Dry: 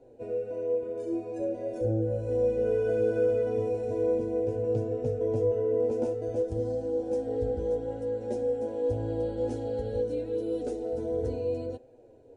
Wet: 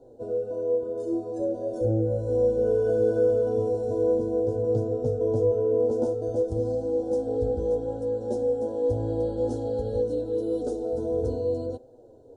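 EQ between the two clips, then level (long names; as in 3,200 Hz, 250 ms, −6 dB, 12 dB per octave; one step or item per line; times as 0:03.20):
Butterworth band-reject 2,200 Hz, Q 0.99
+3.5 dB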